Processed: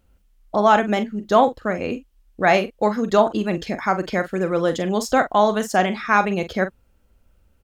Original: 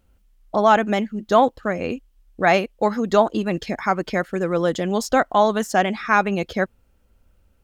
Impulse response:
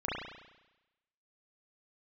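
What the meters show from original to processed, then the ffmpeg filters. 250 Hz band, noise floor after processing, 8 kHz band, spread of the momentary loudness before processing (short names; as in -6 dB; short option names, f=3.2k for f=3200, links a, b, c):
+0.5 dB, -61 dBFS, 0.0 dB, 8 LU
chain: -filter_complex "[0:a]asplit=2[a][b];[b]adelay=43,volume=-11dB[c];[a][c]amix=inputs=2:normalize=0"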